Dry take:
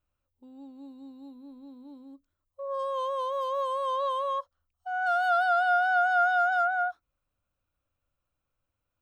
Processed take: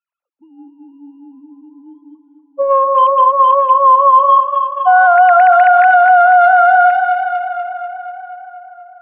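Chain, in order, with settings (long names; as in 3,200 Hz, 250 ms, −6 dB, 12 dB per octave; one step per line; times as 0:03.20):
three sine waves on the formant tracks
dynamic equaliser 940 Hz, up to +5 dB, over −39 dBFS, Q 2.2
transient designer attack +7 dB, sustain −1 dB
on a send: tape delay 242 ms, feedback 75%, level −9 dB, low-pass 3,000 Hz
on the sum: boost into a limiter +18.5 dB
level −1 dB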